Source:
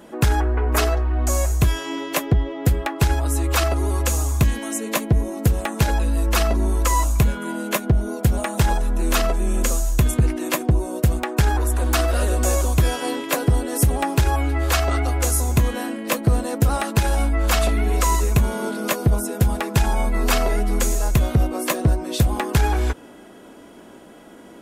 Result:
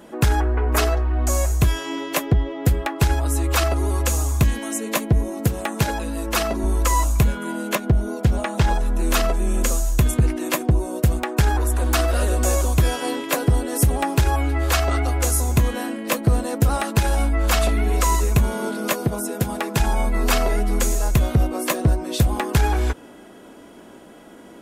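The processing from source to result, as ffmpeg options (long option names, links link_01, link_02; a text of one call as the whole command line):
ffmpeg -i in.wav -filter_complex "[0:a]asettb=1/sr,asplit=3[link_01][link_02][link_03];[link_01]atrim=end=5.404[link_04];[link_02]atrim=start=5.4:end=6.64,asetpts=PTS-STARTPTS,afade=type=in:duration=0.004:curve=qsin,afade=type=out:start_time=1.236:duration=0.004:curve=qsin,highpass=95[link_05];[link_03]atrim=start=6.636[link_06];[link_04][link_05]acrossfade=duration=0.004:curve1=hsin:curve2=qsin[link_07];[link_07][link_06]acrossfade=duration=0.004:curve1=qsin:curve2=hsin,asettb=1/sr,asplit=3[link_08][link_09][link_10];[link_08]atrim=end=7.754[link_11];[link_09]atrim=start=7.75:end=8.86,asetpts=PTS-STARTPTS,afade=type=in:duration=0.004:curve=qsin,afade=type=out:start_time=1.106:duration=0.004:curve=qsin,acrossover=split=6300[link_12][link_13];[link_13]acompressor=threshold=-45dB:ratio=4:attack=1:release=60[link_14];[link_12][link_14]amix=inputs=2:normalize=0[link_15];[link_10]atrim=start=8.856[link_16];[link_11][link_15]acrossfade=duration=0.004:curve1=hsin:curve2=qsin[link_17];[link_17][link_16]acrossfade=duration=0.004:curve1=qsin:curve2=hsin,asettb=1/sr,asplit=3[link_18][link_19][link_20];[link_18]atrim=end=19.024[link_21];[link_19]atrim=start=19.02:end=19.8,asetpts=PTS-STARTPTS,afade=type=in:duration=0.004:curve=qsin,afade=type=out:start_time=0.776:duration=0.004:curve=qsin,highpass=140[link_22];[link_20]atrim=start=19.796[link_23];[link_21][link_22]acrossfade=duration=0.004:curve1=hsin:curve2=qsin[link_24];[link_24][link_23]acrossfade=duration=0.004:curve1=qsin:curve2=hsin" out.wav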